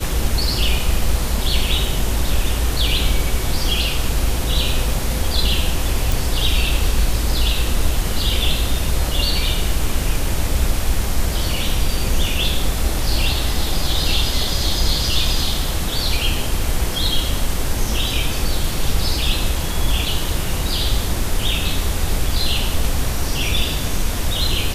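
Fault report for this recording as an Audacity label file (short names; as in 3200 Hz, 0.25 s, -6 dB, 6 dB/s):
6.120000	6.120000	pop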